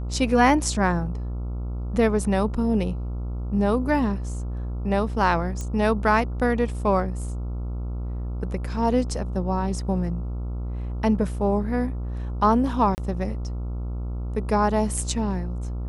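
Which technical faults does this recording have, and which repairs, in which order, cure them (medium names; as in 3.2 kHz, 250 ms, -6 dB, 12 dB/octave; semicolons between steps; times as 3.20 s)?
buzz 60 Hz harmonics 23 -29 dBFS
5.61 s: pop -19 dBFS
12.95–12.98 s: dropout 29 ms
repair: de-click; de-hum 60 Hz, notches 23; interpolate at 12.95 s, 29 ms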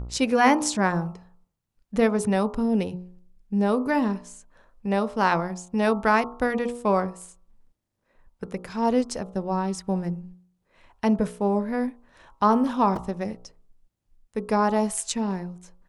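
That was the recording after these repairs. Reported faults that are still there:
nothing left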